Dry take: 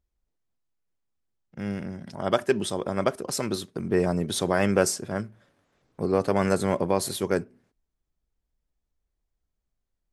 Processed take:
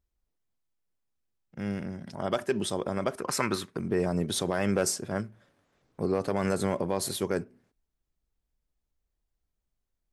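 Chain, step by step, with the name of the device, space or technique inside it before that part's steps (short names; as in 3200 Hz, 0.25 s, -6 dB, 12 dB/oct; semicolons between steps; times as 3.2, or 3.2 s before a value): clipper into limiter (hard clip -10.5 dBFS, distortion -28 dB; limiter -15 dBFS, peak gain reduction 4.5 dB); 3.18–3.77 band shelf 1500 Hz +9.5 dB; gain -1.5 dB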